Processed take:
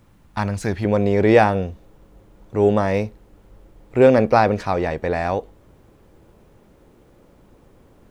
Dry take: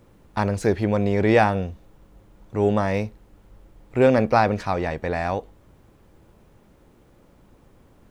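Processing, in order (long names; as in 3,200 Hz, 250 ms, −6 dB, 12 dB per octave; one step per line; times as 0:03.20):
parametric band 440 Hz −8 dB 1.1 octaves, from 0:00.85 +3.5 dB
level +1.5 dB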